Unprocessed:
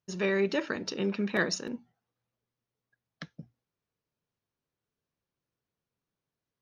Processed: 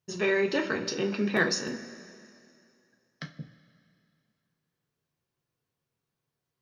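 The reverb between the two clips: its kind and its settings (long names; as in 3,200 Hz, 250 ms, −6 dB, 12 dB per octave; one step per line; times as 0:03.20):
coupled-rooms reverb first 0.24 s, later 2.5 s, from −18 dB, DRR 2.5 dB
level +1.5 dB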